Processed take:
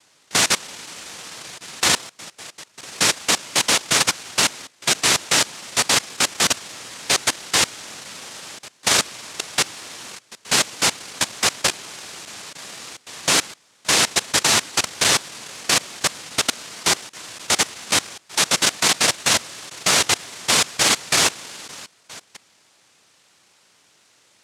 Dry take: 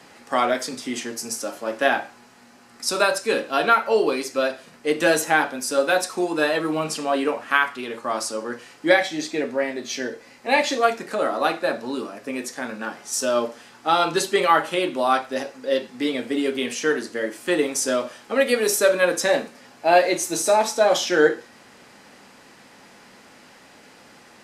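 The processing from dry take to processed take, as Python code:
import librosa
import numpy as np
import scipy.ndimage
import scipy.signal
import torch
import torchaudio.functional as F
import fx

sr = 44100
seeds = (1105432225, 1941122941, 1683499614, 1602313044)

y = fx.echo_stepped(x, sr, ms=183, hz=3700.0, octaves=-0.7, feedback_pct=70, wet_db=-11.5)
y = fx.noise_vocoder(y, sr, seeds[0], bands=1)
y = fx.level_steps(y, sr, step_db=21)
y = y * 10.0 ** (5.0 / 20.0)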